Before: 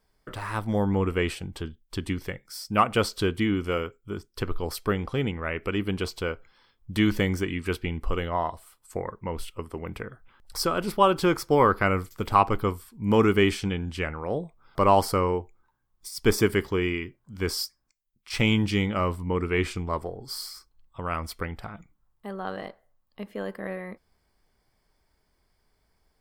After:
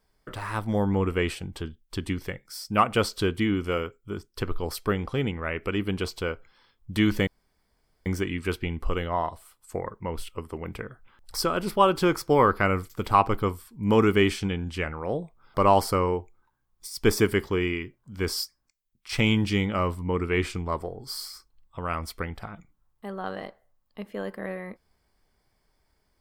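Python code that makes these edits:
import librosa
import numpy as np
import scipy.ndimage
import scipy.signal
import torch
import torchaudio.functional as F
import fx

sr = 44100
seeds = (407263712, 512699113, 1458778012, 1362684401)

y = fx.edit(x, sr, fx.insert_room_tone(at_s=7.27, length_s=0.79), tone=tone)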